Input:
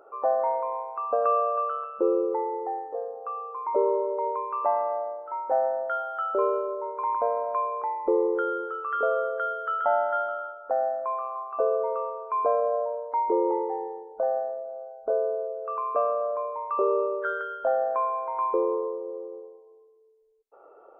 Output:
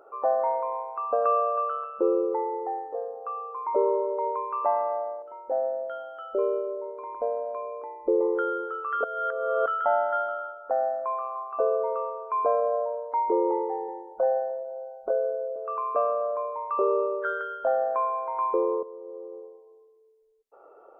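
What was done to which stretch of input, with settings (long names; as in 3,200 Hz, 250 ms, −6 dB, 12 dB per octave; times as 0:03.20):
0:05.22–0:08.21: flat-topped bell 1,300 Hz −11.5 dB
0:09.04–0:09.66: reverse
0:13.88–0:15.56: comb filter 5.5 ms, depth 81%
0:18.83–0:19.42: fade in, from −13.5 dB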